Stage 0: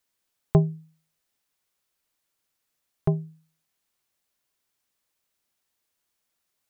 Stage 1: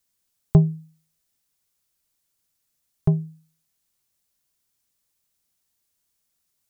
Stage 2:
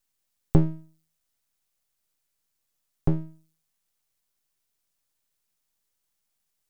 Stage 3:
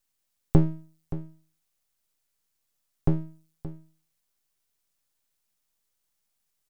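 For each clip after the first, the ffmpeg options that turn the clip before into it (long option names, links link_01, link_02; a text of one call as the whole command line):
ffmpeg -i in.wav -af "bass=frequency=250:gain=9,treble=frequency=4000:gain=8,volume=-3dB" out.wav
ffmpeg -i in.wav -af "aeval=exprs='max(val(0),0)':channel_layout=same" out.wav
ffmpeg -i in.wav -af "aecho=1:1:574:0.188" out.wav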